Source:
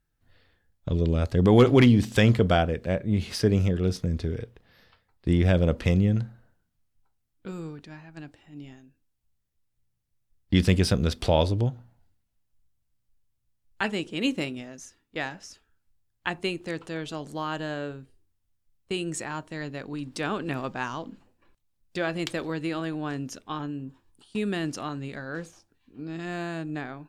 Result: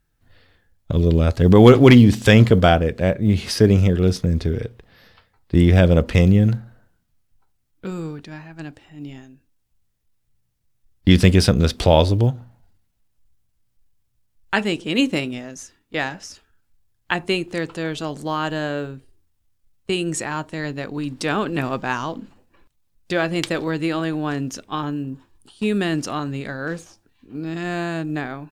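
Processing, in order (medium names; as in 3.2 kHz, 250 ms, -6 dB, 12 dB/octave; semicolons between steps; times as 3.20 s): short-mantissa float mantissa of 6-bit; tempo 0.95×; trim +7.5 dB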